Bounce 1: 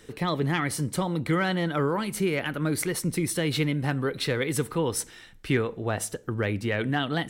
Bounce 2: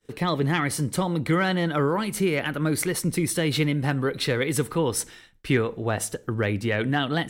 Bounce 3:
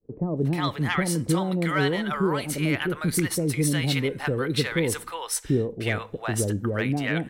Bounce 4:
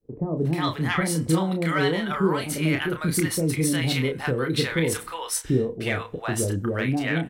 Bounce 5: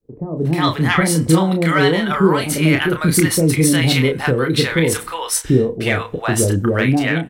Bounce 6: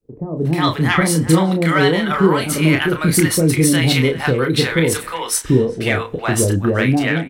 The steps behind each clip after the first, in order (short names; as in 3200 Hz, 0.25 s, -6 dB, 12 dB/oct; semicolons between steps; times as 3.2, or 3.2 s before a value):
expander -42 dBFS; gain +2.5 dB
bands offset in time lows, highs 0.36 s, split 670 Hz
doubler 31 ms -6 dB
AGC gain up to 11 dB
speakerphone echo 0.38 s, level -15 dB